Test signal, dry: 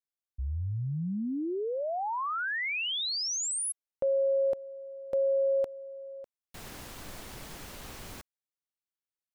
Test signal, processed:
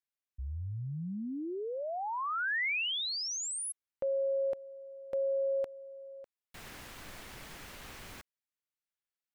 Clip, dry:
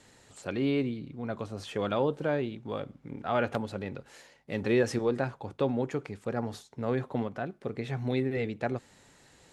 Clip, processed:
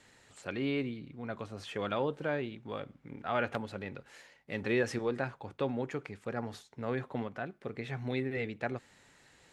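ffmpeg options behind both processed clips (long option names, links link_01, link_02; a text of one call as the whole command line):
ffmpeg -i in.wav -af "equalizer=frequency=2000:width_type=o:width=1.7:gain=6,volume=-5.5dB" out.wav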